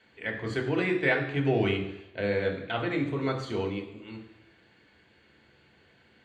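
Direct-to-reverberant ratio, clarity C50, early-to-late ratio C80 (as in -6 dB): 0.0 dB, 8.0 dB, 10.0 dB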